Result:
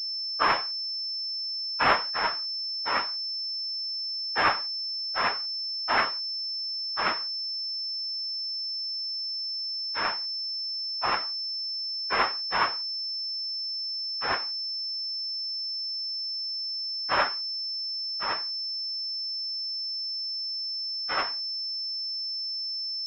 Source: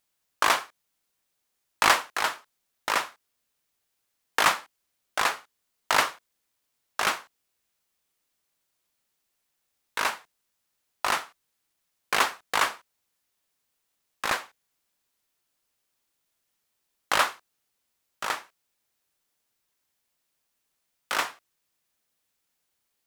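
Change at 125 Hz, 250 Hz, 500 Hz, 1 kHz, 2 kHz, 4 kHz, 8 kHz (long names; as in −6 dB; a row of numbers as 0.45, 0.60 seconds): +3.0 dB, +1.0 dB, +0.5 dB, −0.5 dB, −2.0 dB, +9.0 dB, below −20 dB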